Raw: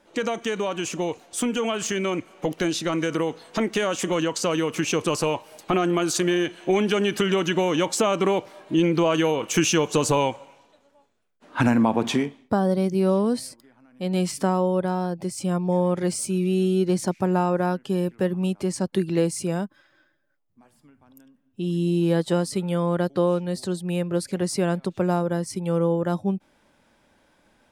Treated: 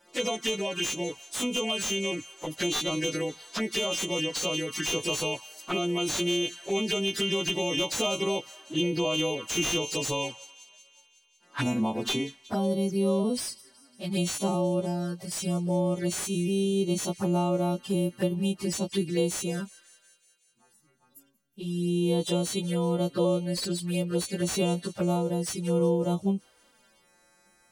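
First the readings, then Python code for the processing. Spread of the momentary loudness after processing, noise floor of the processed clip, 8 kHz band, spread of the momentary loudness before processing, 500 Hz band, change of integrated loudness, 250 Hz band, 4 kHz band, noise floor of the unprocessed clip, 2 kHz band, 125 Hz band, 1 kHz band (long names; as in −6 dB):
7 LU, −64 dBFS, −1.0 dB, 7 LU, −5.5 dB, −4.5 dB, −5.0 dB, +2.5 dB, −63 dBFS, −3.0 dB, −4.5 dB, −8.5 dB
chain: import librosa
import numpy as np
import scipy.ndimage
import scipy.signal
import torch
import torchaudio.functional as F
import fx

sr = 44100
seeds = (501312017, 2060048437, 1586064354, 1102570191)

y = fx.freq_snap(x, sr, grid_st=2)
y = fx.dynamic_eq(y, sr, hz=4000.0, q=1.1, threshold_db=-38.0, ratio=4.0, max_db=7)
y = fx.rider(y, sr, range_db=4, speed_s=2.0)
y = fx.env_flanger(y, sr, rest_ms=5.9, full_db=-18.0)
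y = fx.echo_wet_highpass(y, sr, ms=184, feedback_pct=67, hz=1600.0, wet_db=-23.0)
y = fx.slew_limit(y, sr, full_power_hz=340.0)
y = y * librosa.db_to_amplitude(-5.0)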